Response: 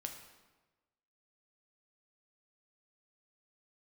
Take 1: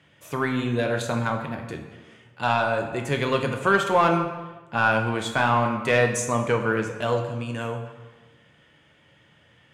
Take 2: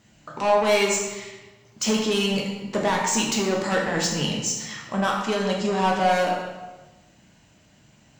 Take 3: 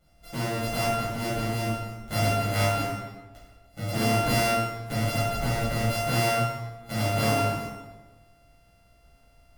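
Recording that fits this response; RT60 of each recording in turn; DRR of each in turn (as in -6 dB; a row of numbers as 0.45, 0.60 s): 1; 1.2, 1.2, 1.2 s; 3.5, -2.5, -12.0 dB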